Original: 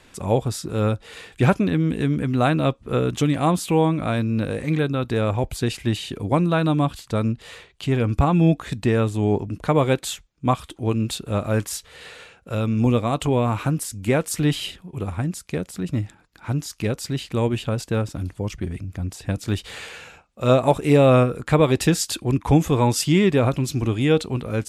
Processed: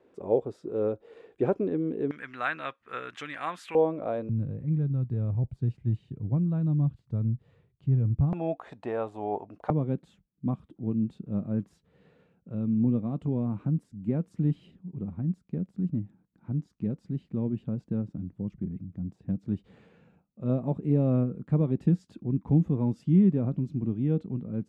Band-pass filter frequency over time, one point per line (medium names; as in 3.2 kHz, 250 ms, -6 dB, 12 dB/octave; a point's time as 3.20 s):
band-pass filter, Q 2.6
420 Hz
from 2.11 s 1.7 kHz
from 3.75 s 530 Hz
from 4.29 s 130 Hz
from 8.33 s 740 Hz
from 9.70 s 190 Hz